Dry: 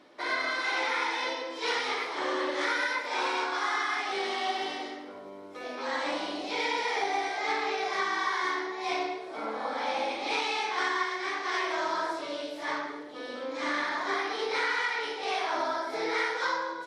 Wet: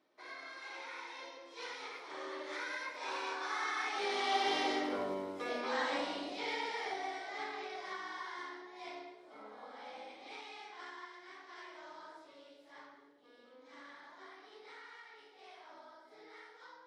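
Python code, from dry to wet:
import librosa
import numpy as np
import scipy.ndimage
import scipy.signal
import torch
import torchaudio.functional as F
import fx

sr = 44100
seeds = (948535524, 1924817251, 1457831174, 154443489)

y = fx.doppler_pass(x, sr, speed_mps=11, closest_m=2.7, pass_at_s=4.99)
y = F.gain(torch.from_numpy(y), 7.5).numpy()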